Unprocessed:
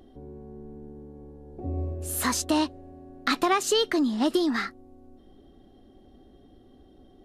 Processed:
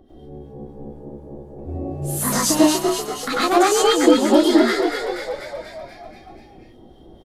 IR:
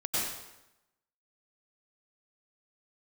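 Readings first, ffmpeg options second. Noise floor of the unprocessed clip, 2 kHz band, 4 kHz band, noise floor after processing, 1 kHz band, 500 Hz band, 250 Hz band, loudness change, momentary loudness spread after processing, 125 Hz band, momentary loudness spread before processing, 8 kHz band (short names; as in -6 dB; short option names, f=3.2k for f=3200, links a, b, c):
-55 dBFS, +6.5 dB, +7.0 dB, -47 dBFS, +8.5 dB, +11.0 dB, +9.5 dB, +8.5 dB, 22 LU, +6.0 dB, 21 LU, +9.0 dB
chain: -filter_complex "[0:a]acrossover=split=1200[a][b];[a]aeval=exprs='val(0)*(1-0.7/2+0.7/2*cos(2*PI*4*n/s))':c=same[c];[b]aeval=exprs='val(0)*(1-0.7/2-0.7/2*cos(2*PI*4*n/s))':c=same[d];[c][d]amix=inputs=2:normalize=0,asplit=9[e][f][g][h][i][j][k][l][m];[f]adelay=242,afreqshift=62,volume=-6dB[n];[g]adelay=484,afreqshift=124,volume=-10.3dB[o];[h]adelay=726,afreqshift=186,volume=-14.6dB[p];[i]adelay=968,afreqshift=248,volume=-18.9dB[q];[j]adelay=1210,afreqshift=310,volume=-23.2dB[r];[k]adelay=1452,afreqshift=372,volume=-27.5dB[s];[l]adelay=1694,afreqshift=434,volume=-31.8dB[t];[m]adelay=1936,afreqshift=496,volume=-36.1dB[u];[e][n][o][p][q][r][s][t][u]amix=inputs=9:normalize=0[v];[1:a]atrim=start_sample=2205,atrim=end_sample=6174[w];[v][w]afir=irnorm=-1:irlink=0,volume=4dB"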